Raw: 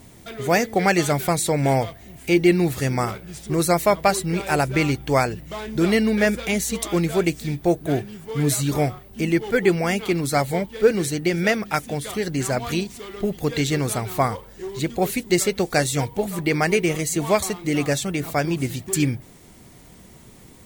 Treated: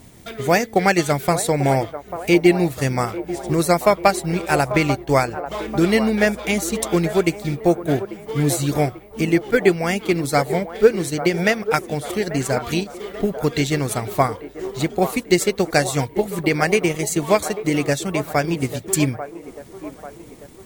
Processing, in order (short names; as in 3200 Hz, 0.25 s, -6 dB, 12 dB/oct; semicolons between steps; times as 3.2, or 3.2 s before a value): 4.72–5.46 expander -27 dBFS; transient shaper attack +3 dB, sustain -5 dB; band-limited delay 0.842 s, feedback 50%, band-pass 690 Hz, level -10 dB; gain +1 dB